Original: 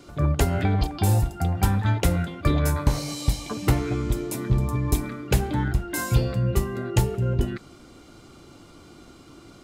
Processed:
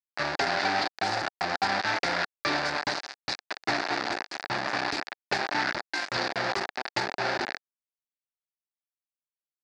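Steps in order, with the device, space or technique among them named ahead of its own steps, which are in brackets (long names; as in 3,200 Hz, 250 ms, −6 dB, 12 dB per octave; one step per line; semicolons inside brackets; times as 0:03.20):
hand-held game console (bit reduction 4 bits; loudspeaker in its box 470–4,800 Hz, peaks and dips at 470 Hz −8 dB, 770 Hz +4 dB, 1,100 Hz −4 dB, 1,700 Hz +6 dB, 3,100 Hz −8 dB, 4,700 Hz +7 dB)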